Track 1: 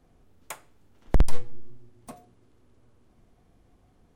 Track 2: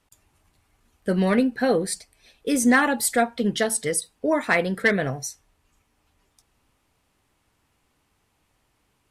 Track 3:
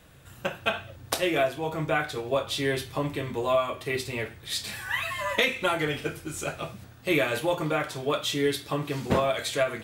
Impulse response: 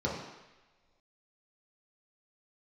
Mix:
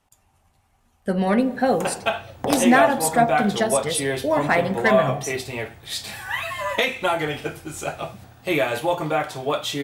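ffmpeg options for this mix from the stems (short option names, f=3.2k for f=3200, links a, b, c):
-filter_complex "[0:a]highpass=330,adelay=1300,volume=1dB,asplit=2[a][b];[b]volume=-8dB[c];[1:a]volume=-0.5dB,asplit=2[d][e];[e]volume=-19dB[f];[2:a]adelay=1400,volume=1.5dB[g];[3:a]atrim=start_sample=2205[h];[c][f]amix=inputs=2:normalize=0[i];[i][h]afir=irnorm=-1:irlink=0[j];[a][d][g][j]amix=inputs=4:normalize=0,equalizer=f=770:w=2.6:g=8.5"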